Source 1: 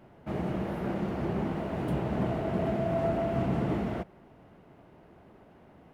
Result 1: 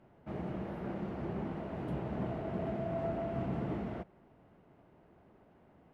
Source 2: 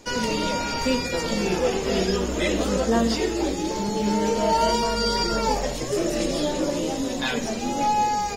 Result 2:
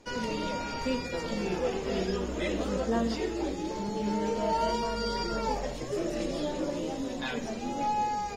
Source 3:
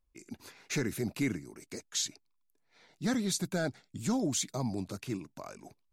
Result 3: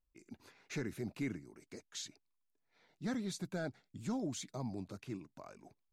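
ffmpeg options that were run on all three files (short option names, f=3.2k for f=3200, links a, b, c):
-af "aemphasis=mode=reproduction:type=cd,volume=-7.5dB"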